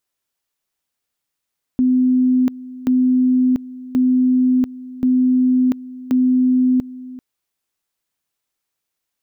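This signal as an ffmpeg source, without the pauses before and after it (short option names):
-f lavfi -i "aevalsrc='pow(10,(-11.5-18.5*gte(mod(t,1.08),0.69))/20)*sin(2*PI*254*t)':d=5.4:s=44100"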